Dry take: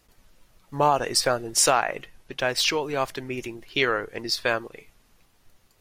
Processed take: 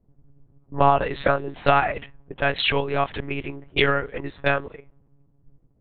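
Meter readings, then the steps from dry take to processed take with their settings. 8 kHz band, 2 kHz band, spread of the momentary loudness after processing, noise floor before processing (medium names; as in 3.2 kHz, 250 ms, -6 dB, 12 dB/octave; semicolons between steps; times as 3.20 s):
under -40 dB, +2.5 dB, 13 LU, -63 dBFS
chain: monotone LPC vocoder at 8 kHz 140 Hz; level-controlled noise filter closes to 310 Hz, open at -23 dBFS; trim +3.5 dB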